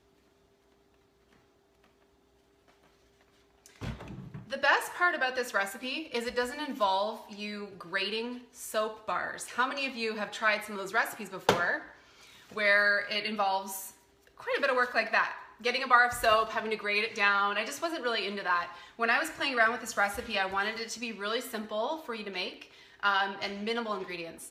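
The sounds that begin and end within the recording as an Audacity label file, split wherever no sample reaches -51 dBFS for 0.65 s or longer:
1.330000	1.840000	sound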